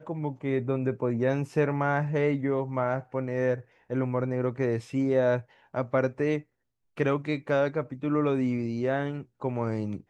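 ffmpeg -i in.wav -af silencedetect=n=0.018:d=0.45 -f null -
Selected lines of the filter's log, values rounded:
silence_start: 6.40
silence_end: 6.98 | silence_duration: 0.58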